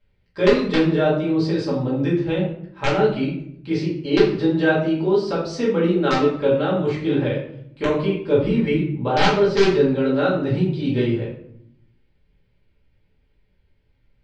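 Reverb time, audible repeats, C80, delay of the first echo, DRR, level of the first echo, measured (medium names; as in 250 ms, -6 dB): 0.70 s, no echo, 8.5 dB, no echo, -8.0 dB, no echo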